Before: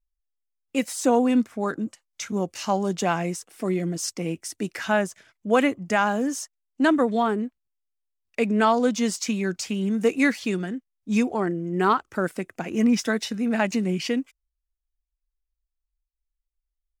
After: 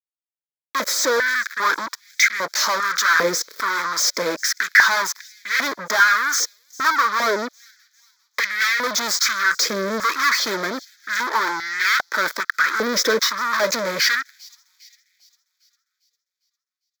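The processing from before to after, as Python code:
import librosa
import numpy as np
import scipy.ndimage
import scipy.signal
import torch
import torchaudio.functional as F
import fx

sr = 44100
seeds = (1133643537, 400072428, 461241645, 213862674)

y = fx.fuzz(x, sr, gain_db=40.0, gate_db=-46.0)
y = fx.fixed_phaser(y, sr, hz=2800.0, stages=6)
y = fx.echo_wet_highpass(y, sr, ms=402, feedback_pct=49, hz=4900.0, wet_db=-19.0)
y = fx.filter_held_highpass(y, sr, hz=2.5, low_hz=490.0, high_hz=2000.0)
y = F.gain(torch.from_numpy(y), -1.0).numpy()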